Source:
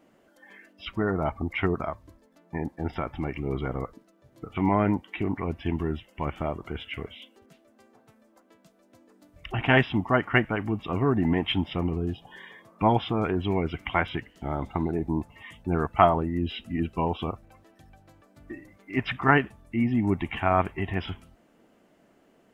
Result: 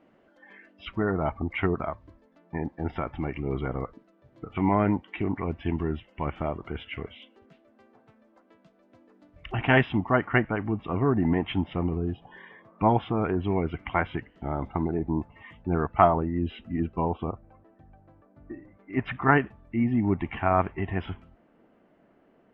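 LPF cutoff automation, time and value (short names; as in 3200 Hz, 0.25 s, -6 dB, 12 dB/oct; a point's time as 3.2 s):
9.93 s 3000 Hz
10.41 s 2000 Hz
16.46 s 2000 Hz
17.26 s 1200 Hz
18.54 s 1200 Hz
19.21 s 2100 Hz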